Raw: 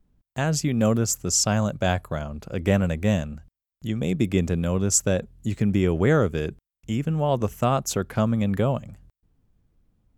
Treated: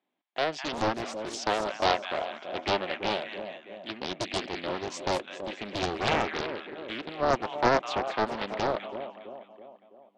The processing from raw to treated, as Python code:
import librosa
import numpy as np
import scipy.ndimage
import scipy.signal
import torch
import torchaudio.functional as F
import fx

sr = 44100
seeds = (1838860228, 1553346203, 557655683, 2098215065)

y = fx.cabinet(x, sr, low_hz=360.0, low_slope=24, high_hz=3800.0, hz=(460.0, 750.0, 1400.0, 2200.0, 3400.0), db=(-10, 4, -5, 5, 5))
y = fx.echo_split(y, sr, split_hz=920.0, low_ms=329, high_ms=204, feedback_pct=52, wet_db=-9.0)
y = fx.doppler_dist(y, sr, depth_ms=1.0)